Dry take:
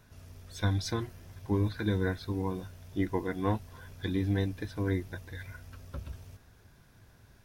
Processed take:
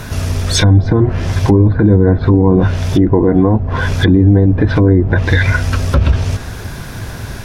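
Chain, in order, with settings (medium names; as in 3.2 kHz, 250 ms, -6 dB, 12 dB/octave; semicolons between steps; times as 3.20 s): low-pass that closes with the level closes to 700 Hz, closed at -29.5 dBFS; compression, threshold -32 dBFS, peak gain reduction 8.5 dB; loudness maximiser +34 dB; trim -1 dB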